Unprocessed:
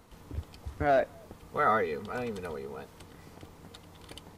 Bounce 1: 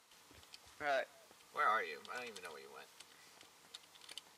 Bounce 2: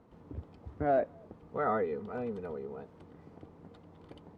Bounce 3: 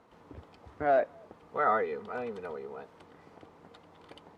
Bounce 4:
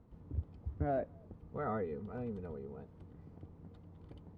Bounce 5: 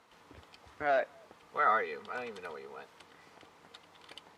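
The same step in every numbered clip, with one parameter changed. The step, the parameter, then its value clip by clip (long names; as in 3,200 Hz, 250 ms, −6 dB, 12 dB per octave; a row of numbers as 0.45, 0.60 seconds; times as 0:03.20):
resonant band-pass, frequency: 5,500, 280, 730, 100, 1,900 Hertz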